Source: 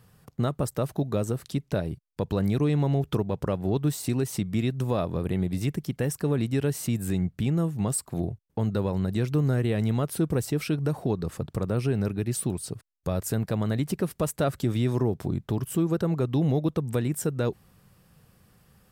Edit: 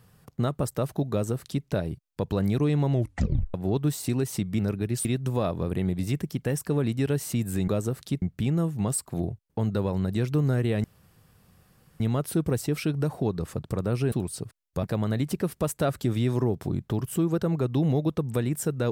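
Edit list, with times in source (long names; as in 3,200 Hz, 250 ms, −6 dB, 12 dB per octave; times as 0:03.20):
0:01.11–0:01.65: duplicate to 0:07.22
0:02.92: tape stop 0.62 s
0:09.84: splice in room tone 1.16 s
0:11.96–0:12.42: move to 0:04.59
0:13.13–0:13.42: remove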